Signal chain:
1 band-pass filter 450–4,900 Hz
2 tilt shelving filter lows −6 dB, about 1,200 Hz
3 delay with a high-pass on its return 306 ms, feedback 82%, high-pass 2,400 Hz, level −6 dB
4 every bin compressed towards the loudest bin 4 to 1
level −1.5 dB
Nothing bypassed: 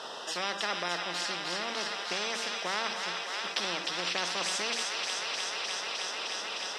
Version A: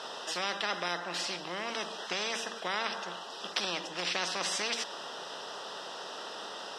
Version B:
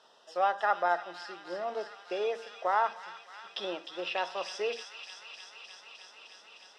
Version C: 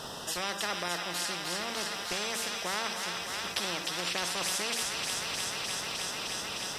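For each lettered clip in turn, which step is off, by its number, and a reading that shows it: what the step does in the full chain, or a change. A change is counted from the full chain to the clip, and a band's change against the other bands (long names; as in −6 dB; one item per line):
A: 3, change in crest factor +2.5 dB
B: 4, 8 kHz band −14.5 dB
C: 1, 125 Hz band +6.0 dB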